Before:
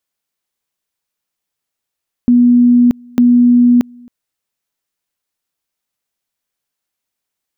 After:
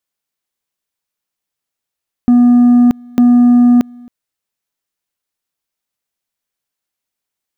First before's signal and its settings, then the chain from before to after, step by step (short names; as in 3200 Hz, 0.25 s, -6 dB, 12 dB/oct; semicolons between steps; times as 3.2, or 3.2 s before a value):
two-level tone 243 Hz -5 dBFS, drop 29.5 dB, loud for 0.63 s, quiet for 0.27 s, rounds 2
sample leveller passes 1